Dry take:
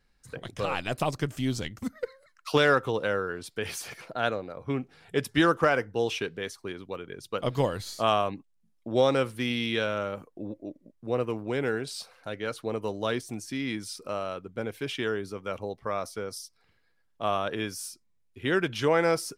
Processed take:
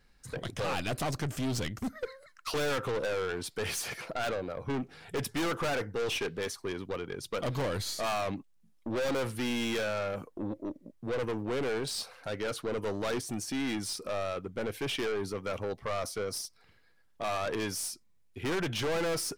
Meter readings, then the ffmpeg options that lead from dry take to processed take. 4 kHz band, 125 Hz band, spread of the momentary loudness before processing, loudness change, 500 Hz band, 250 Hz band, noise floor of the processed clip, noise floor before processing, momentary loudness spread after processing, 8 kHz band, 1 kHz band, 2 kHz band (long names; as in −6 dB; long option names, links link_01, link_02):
−2.0 dB, −3.0 dB, 15 LU, −4.5 dB, −4.5 dB, −4.0 dB, −64 dBFS, −68 dBFS, 7 LU, +3.0 dB, −6.0 dB, −5.5 dB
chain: -af "aeval=exprs='(tanh(50.1*val(0)+0.2)-tanh(0.2))/50.1':channel_layout=same,volume=5dB"